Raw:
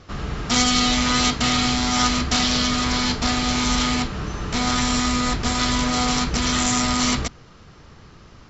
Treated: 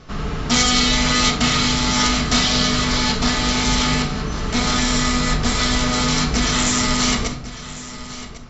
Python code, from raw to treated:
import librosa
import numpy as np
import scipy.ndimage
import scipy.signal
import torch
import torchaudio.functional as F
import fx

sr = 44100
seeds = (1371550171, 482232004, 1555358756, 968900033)

p1 = x + fx.echo_single(x, sr, ms=1100, db=-15.0, dry=0)
p2 = fx.room_shoebox(p1, sr, seeds[0], volume_m3=740.0, walls='furnished', distance_m=1.5)
y = p2 * 10.0 ** (1.5 / 20.0)